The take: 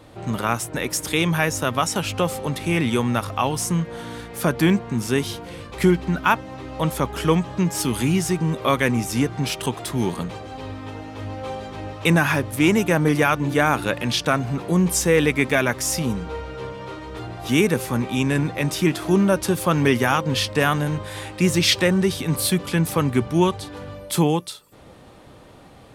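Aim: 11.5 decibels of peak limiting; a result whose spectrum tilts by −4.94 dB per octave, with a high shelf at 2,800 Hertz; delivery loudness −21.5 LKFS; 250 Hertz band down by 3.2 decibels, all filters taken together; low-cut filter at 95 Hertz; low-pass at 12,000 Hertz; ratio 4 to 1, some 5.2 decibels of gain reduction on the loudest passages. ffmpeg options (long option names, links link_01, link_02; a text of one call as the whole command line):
ffmpeg -i in.wav -af "highpass=95,lowpass=12000,equalizer=frequency=250:width_type=o:gain=-4.5,highshelf=frequency=2800:gain=-7,acompressor=threshold=-21dB:ratio=4,volume=10dB,alimiter=limit=-11dB:level=0:latency=1" out.wav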